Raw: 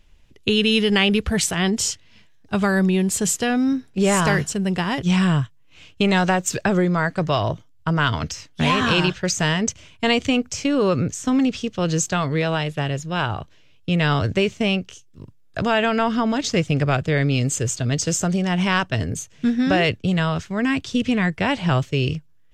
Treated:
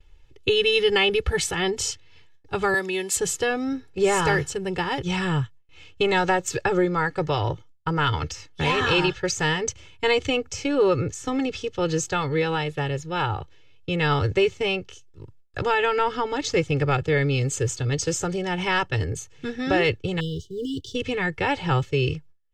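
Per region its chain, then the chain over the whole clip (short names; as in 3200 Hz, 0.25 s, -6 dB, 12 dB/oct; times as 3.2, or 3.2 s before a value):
2.74–3.17 HPF 200 Hz 24 dB/oct + tilt shelf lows -6 dB, about 1100 Hz
20.2–20.95 G.711 law mismatch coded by A + brick-wall FIR band-stop 490–2800 Hz
whole clip: gate with hold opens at -48 dBFS; high shelf 6800 Hz -8.5 dB; comb 2.3 ms, depth 92%; gain -3.5 dB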